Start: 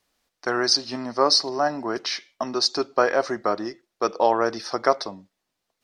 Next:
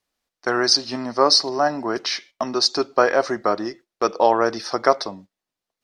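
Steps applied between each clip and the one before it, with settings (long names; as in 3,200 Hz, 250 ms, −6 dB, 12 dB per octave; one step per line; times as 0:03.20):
noise gate −45 dBFS, range −10 dB
level +3 dB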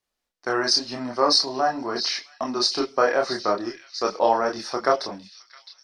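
multi-voice chorus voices 6, 0.79 Hz, delay 28 ms, depth 3.4 ms
echo through a band-pass that steps 663 ms, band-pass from 3,300 Hz, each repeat 0.7 octaves, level −8 dB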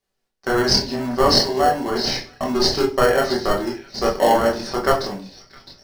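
in parallel at −5.5 dB: decimation without filtering 36×
on the sum: convolution reverb RT60 0.35 s, pre-delay 3 ms, DRR 1 dB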